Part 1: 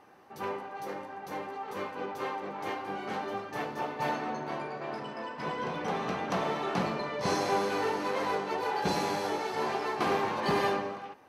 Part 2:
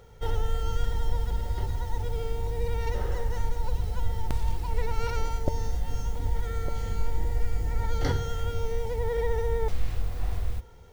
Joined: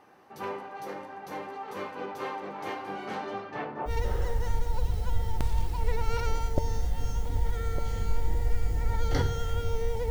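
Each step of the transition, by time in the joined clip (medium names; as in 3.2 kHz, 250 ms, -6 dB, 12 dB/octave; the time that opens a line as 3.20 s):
part 1
3.14–3.91 s: low-pass 12 kHz -> 1.1 kHz
3.88 s: go over to part 2 from 2.78 s, crossfade 0.06 s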